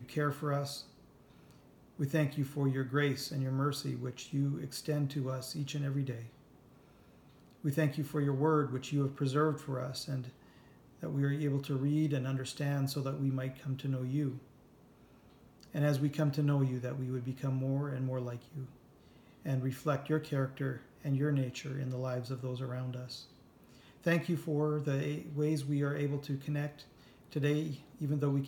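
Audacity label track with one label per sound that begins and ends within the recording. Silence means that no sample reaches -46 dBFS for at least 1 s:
7.640000	14.390000	sound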